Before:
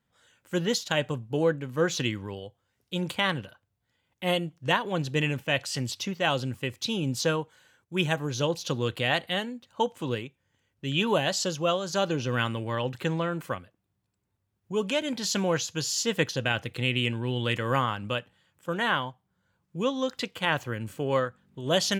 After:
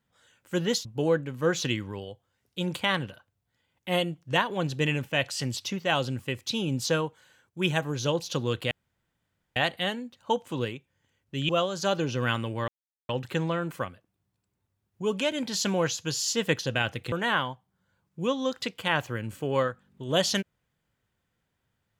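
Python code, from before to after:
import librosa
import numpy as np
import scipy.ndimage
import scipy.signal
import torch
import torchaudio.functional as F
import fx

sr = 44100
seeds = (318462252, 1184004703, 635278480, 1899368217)

y = fx.edit(x, sr, fx.cut(start_s=0.85, length_s=0.35),
    fx.insert_room_tone(at_s=9.06, length_s=0.85),
    fx.cut(start_s=10.99, length_s=0.61),
    fx.insert_silence(at_s=12.79, length_s=0.41),
    fx.cut(start_s=16.82, length_s=1.87), tone=tone)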